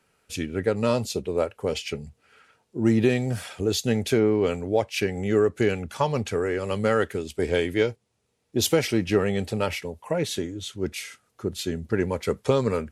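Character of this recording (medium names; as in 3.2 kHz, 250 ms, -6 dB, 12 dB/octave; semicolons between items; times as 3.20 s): noise floor -73 dBFS; spectral tilt -5.5 dB/octave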